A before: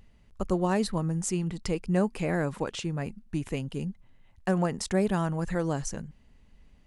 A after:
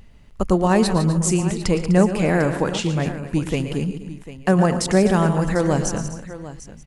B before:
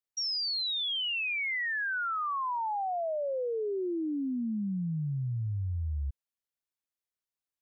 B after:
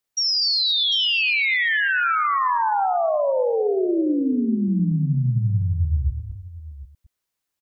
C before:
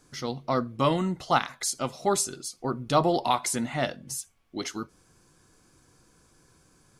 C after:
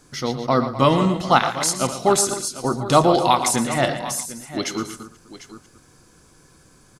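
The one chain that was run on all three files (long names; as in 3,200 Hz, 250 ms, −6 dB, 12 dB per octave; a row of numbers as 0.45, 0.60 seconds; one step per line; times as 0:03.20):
delay that plays each chunk backwards 117 ms, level −11 dB
on a send: multi-tap delay 115/140/251/748 ms −13/−19.5/−15/−15 dB
on the sum: loudness normalisation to −20 LKFS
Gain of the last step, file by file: +9.0, +10.5, +7.5 decibels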